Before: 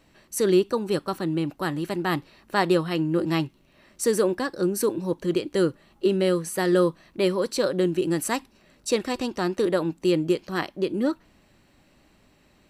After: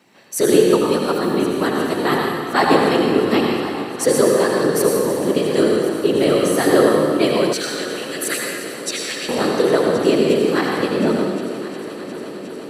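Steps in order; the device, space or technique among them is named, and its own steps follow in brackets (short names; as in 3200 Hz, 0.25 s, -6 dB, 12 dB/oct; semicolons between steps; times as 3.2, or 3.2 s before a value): whispering ghost (whisperiser; HPF 220 Hz 12 dB/oct; reverb RT60 1.9 s, pre-delay 71 ms, DRR -1 dB); 7.53–9.29 steep high-pass 1300 Hz 96 dB/oct; multi-head echo 0.357 s, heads first and third, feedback 73%, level -17 dB; gain +5.5 dB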